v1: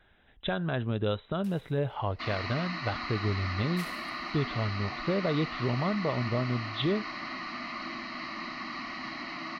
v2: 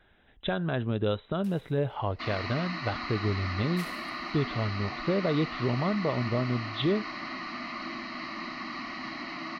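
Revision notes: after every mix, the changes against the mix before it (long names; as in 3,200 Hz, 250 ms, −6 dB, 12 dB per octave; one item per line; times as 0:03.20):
master: add parametric band 330 Hz +2.5 dB 1.7 octaves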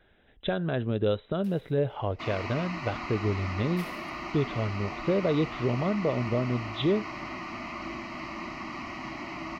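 second sound: remove loudspeaker in its box 190–5,200 Hz, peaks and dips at 250 Hz +4 dB, 420 Hz −7 dB, 920 Hz −9 dB, 1,700 Hz +6 dB, 2,500 Hz −4 dB, 4,100 Hz +10 dB
master: add octave-band graphic EQ 500/1,000/8,000 Hz +4/−4/−5 dB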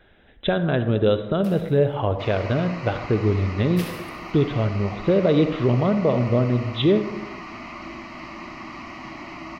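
speech +6.0 dB
first sound +9.0 dB
reverb: on, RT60 1.1 s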